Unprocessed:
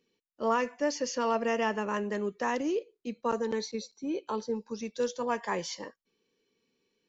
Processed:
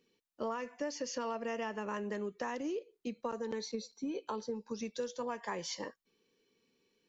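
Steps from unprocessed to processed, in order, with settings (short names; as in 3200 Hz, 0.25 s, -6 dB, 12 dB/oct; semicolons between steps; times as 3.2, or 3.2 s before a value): 3.66–4.25 comb 4.3 ms, depth 47%; compressor, threshold -36 dBFS, peak gain reduction 13 dB; gain +1 dB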